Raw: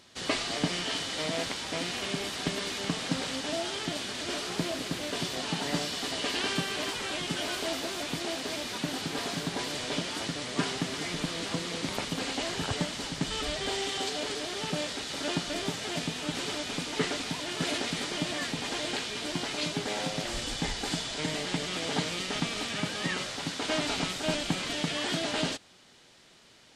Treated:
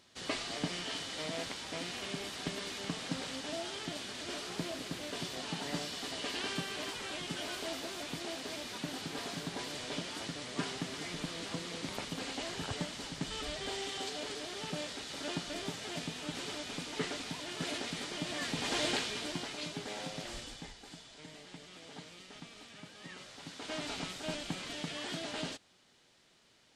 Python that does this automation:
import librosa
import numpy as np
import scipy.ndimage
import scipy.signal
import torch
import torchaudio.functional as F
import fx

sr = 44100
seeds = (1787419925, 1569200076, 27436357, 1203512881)

y = fx.gain(x, sr, db=fx.line((18.21, -7.0), (18.84, 1.0), (19.58, -9.0), (20.34, -9.0), (20.79, -19.0), (22.94, -19.0), (23.86, -9.0)))